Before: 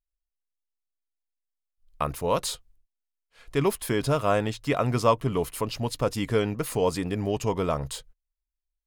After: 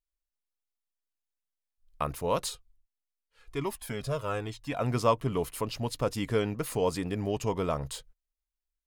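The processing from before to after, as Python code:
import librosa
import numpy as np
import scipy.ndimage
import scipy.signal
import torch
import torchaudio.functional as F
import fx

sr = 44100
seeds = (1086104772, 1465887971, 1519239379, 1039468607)

y = fx.comb_cascade(x, sr, direction='falling', hz=1.1, at=(2.48, 4.8), fade=0.02)
y = y * librosa.db_to_amplitude(-3.5)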